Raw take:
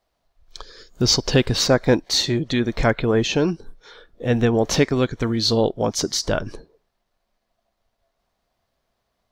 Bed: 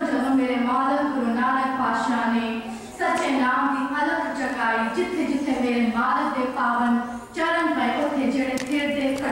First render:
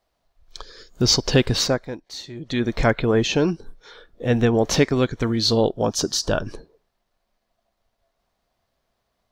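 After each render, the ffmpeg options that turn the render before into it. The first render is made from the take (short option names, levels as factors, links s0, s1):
-filter_complex "[0:a]asettb=1/sr,asplit=3[s0][s1][s2];[s0]atrim=end=5.634[s3];[s1]atrim=start=5.63:end=6.45,asetpts=PTS-STARTPTS,afade=t=in:d=0.004:c=qsin,afade=t=out:st=0.816:d=0.004:c=qsin,asuperstop=centerf=2100:order=4:qfactor=4.2[s4];[s2]atrim=start=6.446[s5];[s3][s4]acrossfade=d=0.004:c1=hsin:c2=qsin[s6];[s6][s5]acrossfade=d=0.004:c1=qsin:c2=hsin,asplit=3[s7][s8][s9];[s7]atrim=end=1.88,asetpts=PTS-STARTPTS,afade=t=out:st=1.57:d=0.31:silence=0.16788[s10];[s8]atrim=start=1.88:end=2.35,asetpts=PTS-STARTPTS,volume=0.168[s11];[s9]atrim=start=2.35,asetpts=PTS-STARTPTS,afade=t=in:d=0.31:silence=0.16788[s12];[s10][s11][s12]concat=n=3:v=0:a=1"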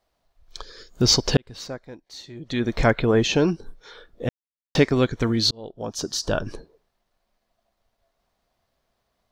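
-filter_complex "[0:a]asplit=5[s0][s1][s2][s3][s4];[s0]atrim=end=1.37,asetpts=PTS-STARTPTS,afade=t=out:st=1.366:d=0.004:c=hsin[s5];[s1]atrim=start=1.37:end=4.29,asetpts=PTS-STARTPTS,afade=t=in:d=1.5,afade=t=out:st=2.916:d=0.004:c=hsin[s6];[s2]atrim=start=4.29:end=4.75,asetpts=PTS-STARTPTS,volume=0[s7];[s3]atrim=start=4.75:end=5.51,asetpts=PTS-STARTPTS,afade=t=in:d=0.004:c=hsin,afade=t=out:st=0.756:d=0.004:c=hsin[s8];[s4]atrim=start=5.51,asetpts=PTS-STARTPTS,afade=t=in:d=1.03[s9];[s5][s6][s7][s8][s9]concat=n=5:v=0:a=1"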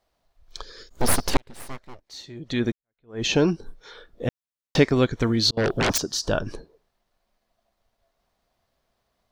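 -filter_complex "[0:a]asplit=3[s0][s1][s2];[s0]afade=t=out:st=0.89:d=0.02[s3];[s1]aeval=exprs='abs(val(0))':c=same,afade=t=in:st=0.89:d=0.02,afade=t=out:st=2.07:d=0.02[s4];[s2]afade=t=in:st=2.07:d=0.02[s5];[s3][s4][s5]amix=inputs=3:normalize=0,asettb=1/sr,asplit=3[s6][s7][s8];[s6]atrim=end=5.574[s9];[s7]atrim=start=5.57:end=5.98,asetpts=PTS-STARTPTS,afade=t=in:d=0.004:c=qsin,afade=t=out:st=0.406:d=0.004:c=qsin,aeval=exprs='0.126*sin(PI/2*7.08*val(0)/0.126)':c=same[s10];[s8]atrim=start=5.976[s11];[s9][s10]acrossfade=d=0.004:c1=hsin:c2=qsin[s12];[s12][s11]acrossfade=d=0.004:c1=qsin:c2=hsin,asplit=2[s13][s14];[s13]atrim=end=2.72,asetpts=PTS-STARTPTS,afade=t=out:st=2.716:d=0.004:c=hsin[s15];[s14]atrim=start=2.72,asetpts=PTS-STARTPTS,afade=t=in:d=0.53:c=exp[s16];[s15][s16]concat=n=2:v=0:a=1"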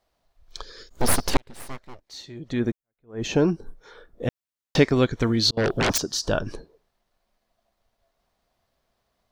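-filter_complex "[0:a]asettb=1/sr,asplit=3[s0][s1][s2];[s0]atrim=end=2.494[s3];[s1]atrim=start=2.49:end=4.23,asetpts=PTS-STARTPTS,afade=t=in:d=0.004:c=qsin,afade=t=out:st=1.736:d=0.004:c=qsin,equalizer=f=3800:w=0.75:g=-9[s4];[s2]atrim=start=4.226[s5];[s3][s4]acrossfade=d=0.004:c1=hsin:c2=qsin[s6];[s6][s5]acrossfade=d=0.004:c1=qsin:c2=hsin"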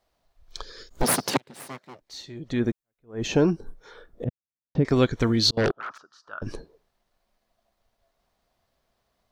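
-filter_complex "[0:a]asettb=1/sr,asplit=3[s0][s1][s2];[s0]atrim=end=1.034[s3];[s1]atrim=start=1.03:end=2.01,asetpts=PTS-STARTPTS,afade=t=in:d=0.004:c=qsin,afade=t=out:st=0.976:d=0.004:c=qsin,highpass=f=130:w=0.5412,highpass=f=130:w=1.3066[s4];[s2]atrim=start=2.006[s5];[s3][s4]acrossfade=d=0.004:c1=hsin:c2=qsin[s6];[s6][s5]acrossfade=d=0.004:c1=qsin:c2=hsin,asettb=1/sr,asplit=3[s7][s8][s9];[s7]atrim=end=4.244[s10];[s8]atrim=start=4.24:end=4.85,asetpts=PTS-STARTPTS,afade=t=in:d=0.004:c=qsin,afade=t=out:st=0.606:d=0.004:c=qsin,bandpass=f=120:t=q:w=0.69[s11];[s9]atrim=start=4.846[s12];[s10][s11]acrossfade=d=0.004:c1=hsin:c2=qsin[s13];[s13][s12]acrossfade=d=0.004:c1=qsin:c2=hsin,asettb=1/sr,asplit=3[s14][s15][s16];[s14]atrim=end=5.714[s17];[s15]atrim=start=5.71:end=6.42,asetpts=PTS-STARTPTS,afade=t=in:d=0.004:c=qsin,afade=t=out:st=0.706:d=0.004:c=qsin,bandpass=f=1300:t=q:w=8.1[s18];[s16]atrim=start=6.416[s19];[s17][s18]acrossfade=d=0.004:c1=hsin:c2=qsin[s20];[s20][s19]acrossfade=d=0.004:c1=qsin:c2=hsin"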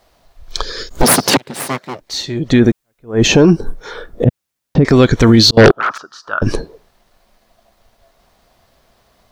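-af "acontrast=74,alimiter=level_in=3.76:limit=0.891:release=50:level=0:latency=1"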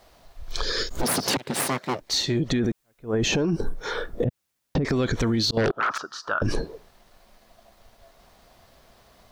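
-af "alimiter=limit=0.237:level=0:latency=1:release=26,acompressor=threshold=0.1:ratio=6"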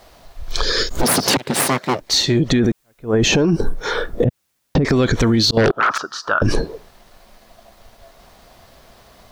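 -af "volume=2.51"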